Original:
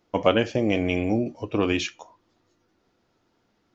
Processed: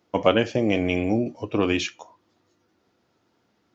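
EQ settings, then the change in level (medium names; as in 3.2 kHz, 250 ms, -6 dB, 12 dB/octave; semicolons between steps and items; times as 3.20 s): high-pass 74 Hz; +1.0 dB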